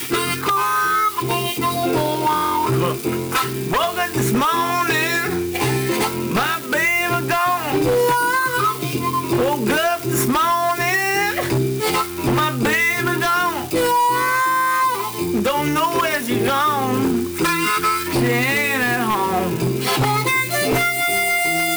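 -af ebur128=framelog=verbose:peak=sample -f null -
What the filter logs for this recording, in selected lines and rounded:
Integrated loudness:
  I:         -18.4 LUFS
  Threshold: -28.4 LUFS
Loudness range:
  LRA:         1.4 LU
  Threshold: -38.5 LUFS
  LRA low:   -19.2 LUFS
  LRA high:  -17.8 LUFS
Sample peak:
  Peak:      -11.7 dBFS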